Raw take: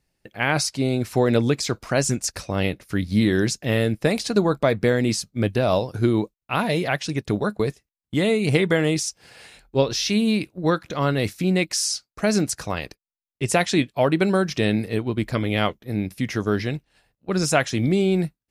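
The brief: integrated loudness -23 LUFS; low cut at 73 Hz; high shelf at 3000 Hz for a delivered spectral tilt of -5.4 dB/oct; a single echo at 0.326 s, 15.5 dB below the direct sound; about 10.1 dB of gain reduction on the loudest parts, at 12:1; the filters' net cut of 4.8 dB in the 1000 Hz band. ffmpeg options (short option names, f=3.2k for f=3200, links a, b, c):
-af "highpass=73,equalizer=f=1k:t=o:g=-6,highshelf=f=3k:g=-8,acompressor=threshold=-25dB:ratio=12,aecho=1:1:326:0.168,volume=8dB"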